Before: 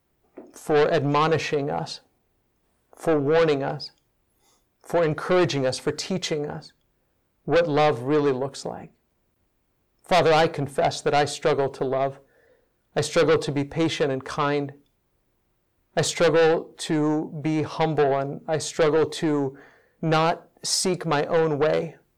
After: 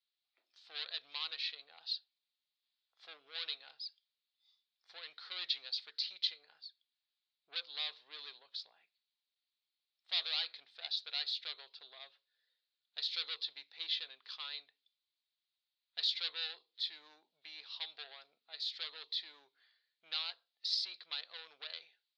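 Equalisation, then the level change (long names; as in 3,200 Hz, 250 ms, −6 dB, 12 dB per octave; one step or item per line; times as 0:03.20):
flat-topped band-pass 4,300 Hz, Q 3.2
high-frequency loss of the air 490 metres
+15.0 dB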